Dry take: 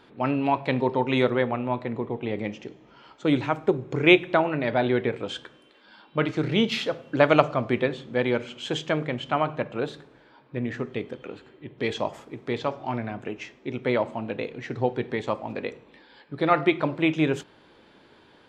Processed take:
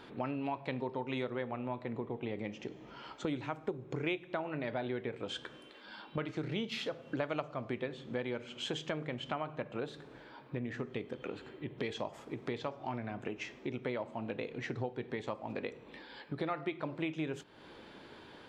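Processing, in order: compressor 4:1, threshold -39 dBFS, peak gain reduction 23 dB; gain +2 dB

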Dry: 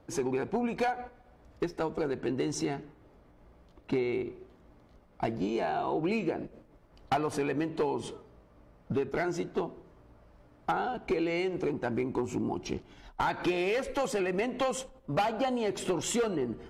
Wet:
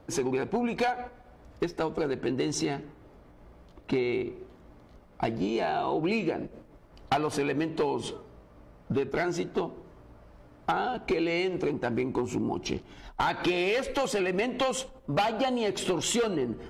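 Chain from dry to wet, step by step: dynamic EQ 3600 Hz, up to +5 dB, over -50 dBFS, Q 1.2; in parallel at -2 dB: compressor, threshold -37 dBFS, peak gain reduction 12.5 dB

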